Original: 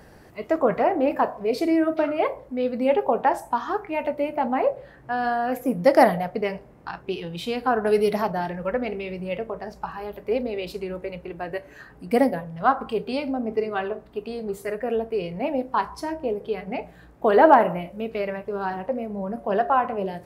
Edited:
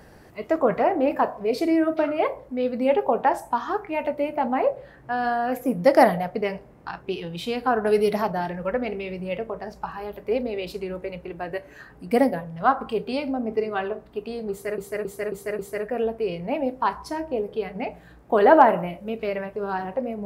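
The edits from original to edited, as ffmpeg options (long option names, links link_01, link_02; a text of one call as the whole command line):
ffmpeg -i in.wav -filter_complex "[0:a]asplit=5[link_01][link_02][link_03][link_04][link_05];[link_01]atrim=end=14.782[link_06];[link_02]atrim=start=14.508:end=14.782[link_07];[link_03]atrim=start=14.508:end=14.782[link_08];[link_04]atrim=start=14.508:end=14.782[link_09];[link_05]atrim=start=14.508[link_10];[link_06][link_07]acrossfade=duration=0.004:curve1=hsin:curve2=hsin[link_11];[link_11][link_08]acrossfade=duration=0.004:curve1=hsin:curve2=hsin[link_12];[link_12][link_09]acrossfade=duration=0.004:curve1=hsin:curve2=hsin[link_13];[link_13][link_10]acrossfade=duration=0.004:curve1=hsin:curve2=hsin" out.wav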